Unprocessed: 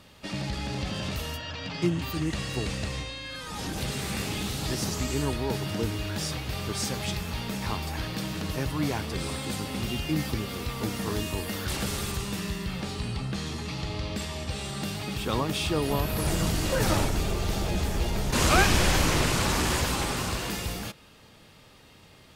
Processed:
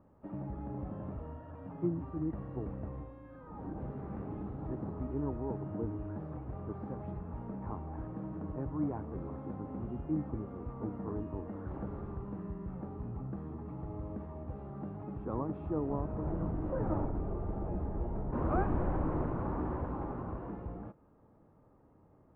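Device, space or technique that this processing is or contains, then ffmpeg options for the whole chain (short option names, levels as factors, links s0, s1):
under water: -af "lowpass=f=1100:w=0.5412,lowpass=f=1100:w=1.3066,equalizer=f=300:t=o:w=0.41:g=5,volume=0.376"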